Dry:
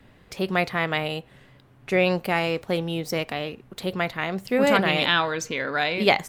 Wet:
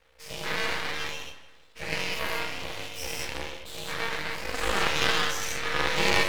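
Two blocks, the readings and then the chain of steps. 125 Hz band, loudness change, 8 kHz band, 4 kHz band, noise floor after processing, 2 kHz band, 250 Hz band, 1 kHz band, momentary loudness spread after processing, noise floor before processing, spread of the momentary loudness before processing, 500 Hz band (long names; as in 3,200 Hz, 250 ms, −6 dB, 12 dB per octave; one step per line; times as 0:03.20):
−9.5 dB, −5.0 dB, +5.0 dB, −1.0 dB, −54 dBFS, −3.0 dB, −12.5 dB, −5.0 dB, 13 LU, −55 dBFS, 11 LU, −9.5 dB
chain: every bin's largest magnitude spread in time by 240 ms
Butterworth high-pass 230 Hz 72 dB per octave
parametric band 500 Hz −15 dB 0.6 octaves
resonators tuned to a chord G2 fifth, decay 0.25 s
ring modulation 230 Hz
half-wave rectification
feedback echo with a low-pass in the loop 160 ms, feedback 44%, low-pass 4,600 Hz, level −13 dB
level +8 dB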